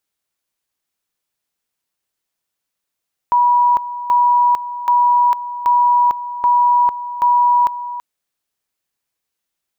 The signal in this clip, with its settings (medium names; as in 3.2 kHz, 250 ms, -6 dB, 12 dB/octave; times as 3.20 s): two-level tone 971 Hz -9.5 dBFS, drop 13.5 dB, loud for 0.45 s, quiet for 0.33 s, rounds 6